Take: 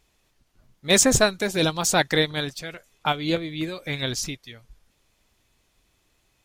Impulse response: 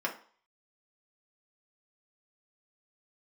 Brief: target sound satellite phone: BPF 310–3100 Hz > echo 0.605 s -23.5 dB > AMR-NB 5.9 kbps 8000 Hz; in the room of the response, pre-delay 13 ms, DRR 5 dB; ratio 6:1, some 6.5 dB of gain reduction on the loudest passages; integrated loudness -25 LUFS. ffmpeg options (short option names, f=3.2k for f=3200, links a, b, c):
-filter_complex "[0:a]acompressor=threshold=-20dB:ratio=6,asplit=2[a][b];[1:a]atrim=start_sample=2205,adelay=13[c];[b][c]afir=irnorm=-1:irlink=0,volume=-11.5dB[d];[a][d]amix=inputs=2:normalize=0,highpass=310,lowpass=3.1k,aecho=1:1:605:0.0668,volume=5.5dB" -ar 8000 -c:a libopencore_amrnb -b:a 5900